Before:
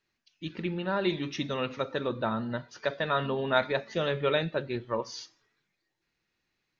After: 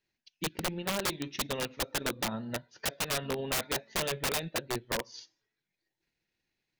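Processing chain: transient shaper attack +10 dB, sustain -6 dB; peaking EQ 1.2 kHz -9.5 dB 0.41 oct; integer overflow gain 20.5 dB; trim -4 dB

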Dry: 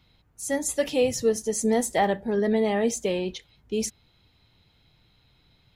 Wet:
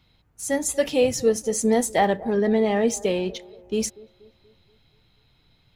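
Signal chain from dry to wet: 2.37–2.88 s: treble shelf 8.1 kHz -10.5 dB; in parallel at -8.5 dB: hysteresis with a dead band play -33.5 dBFS; on the sum: feedback echo behind a band-pass 239 ms, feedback 48%, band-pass 590 Hz, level -18.5 dB

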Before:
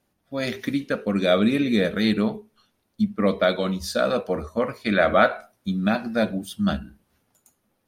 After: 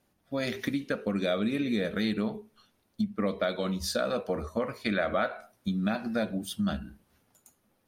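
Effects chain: compression 3:1, threshold -28 dBFS, peak gain reduction 12 dB

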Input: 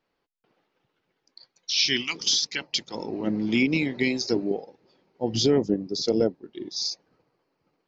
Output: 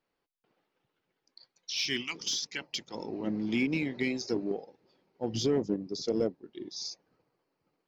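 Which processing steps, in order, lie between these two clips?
dynamic bell 4.3 kHz, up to -6 dB, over -39 dBFS, Q 1.8; in parallel at -10 dB: hard clipper -22.5 dBFS, distortion -8 dB; on the sum: trim -8 dB

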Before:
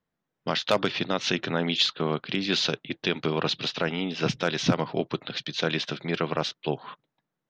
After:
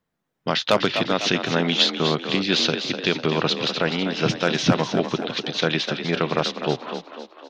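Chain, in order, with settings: frequency-shifting echo 250 ms, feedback 49%, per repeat +41 Hz, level -8.5 dB; trim +4.5 dB

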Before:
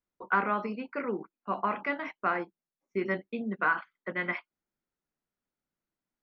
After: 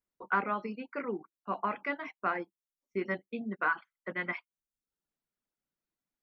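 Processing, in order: reverb removal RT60 0.55 s; trim -2.5 dB

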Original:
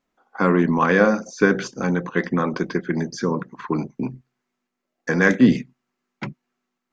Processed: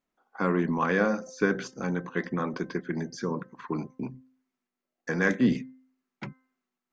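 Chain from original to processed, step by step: de-hum 259.4 Hz, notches 8; trim -8 dB

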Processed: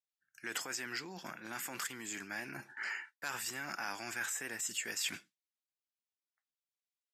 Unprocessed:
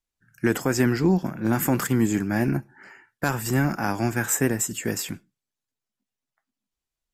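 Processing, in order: gate with hold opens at -44 dBFS; treble shelf 3 kHz +9 dB; peak limiter -15.5 dBFS, peak gain reduction 12 dB; reverse; compression 10:1, threshold -36 dBFS, peak gain reduction 16.5 dB; reverse; band-pass filter 2.7 kHz, Q 0.7; trim +7.5 dB

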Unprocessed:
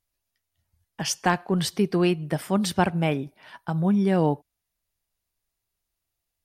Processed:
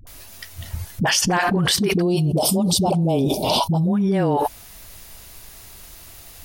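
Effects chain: 1.95–3.87 s: Chebyshev band-stop 720–4100 Hz, order 2; phase dispersion highs, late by 70 ms, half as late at 400 Hz; level flattener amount 100%

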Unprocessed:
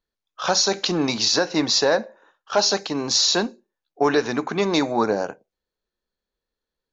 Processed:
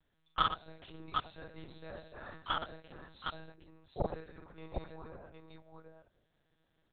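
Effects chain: inverted gate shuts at -23 dBFS, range -36 dB; multi-tap echo 45/119/762 ms -3/-9.5/-4 dB; monotone LPC vocoder at 8 kHz 160 Hz; trim +6.5 dB

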